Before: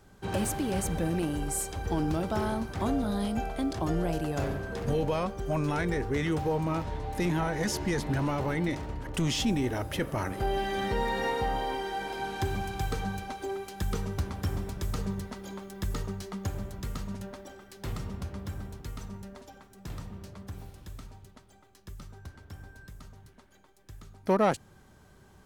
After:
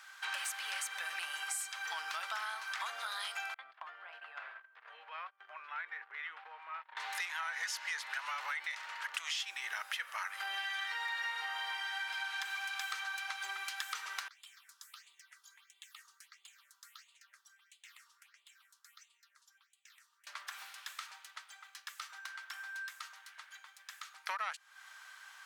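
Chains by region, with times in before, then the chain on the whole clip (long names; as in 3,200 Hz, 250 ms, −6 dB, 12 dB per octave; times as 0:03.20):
0:03.54–0:06.97: noise gate −32 dBFS, range −31 dB + high-frequency loss of the air 460 metres + downward compressor 10 to 1, threshold −39 dBFS
0:14.28–0:20.27: guitar amp tone stack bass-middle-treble 6-0-2 + all-pass phaser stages 6, 1.5 Hz, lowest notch 150–1,600 Hz
whole clip: inverse Chebyshev high-pass filter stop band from 220 Hz, stop band 80 dB; high-shelf EQ 5,800 Hz −11.5 dB; downward compressor 5 to 1, threshold −52 dBFS; level +14.5 dB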